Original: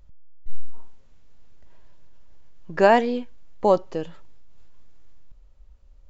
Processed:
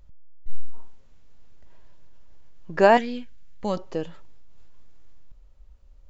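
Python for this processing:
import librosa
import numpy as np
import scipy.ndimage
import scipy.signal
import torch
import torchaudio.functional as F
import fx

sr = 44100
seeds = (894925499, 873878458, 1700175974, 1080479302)

y = fx.band_shelf(x, sr, hz=560.0, db=-11.0, octaves=2.3, at=(2.97, 3.77))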